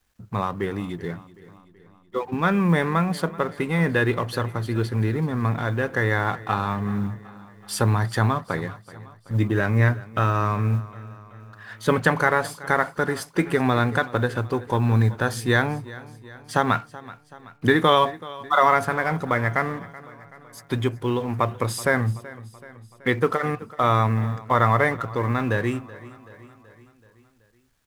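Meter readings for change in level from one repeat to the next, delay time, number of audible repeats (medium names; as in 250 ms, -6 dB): -5.0 dB, 379 ms, 4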